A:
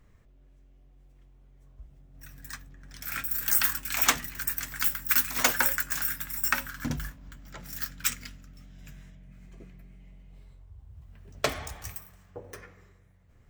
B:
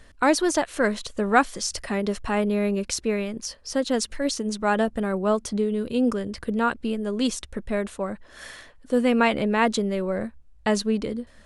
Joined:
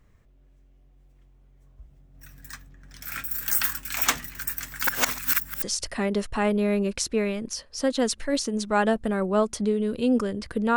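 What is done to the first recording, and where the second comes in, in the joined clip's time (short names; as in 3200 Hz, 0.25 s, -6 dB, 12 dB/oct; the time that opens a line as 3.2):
A
4.87–5.62 reverse
5.62 switch to B from 1.54 s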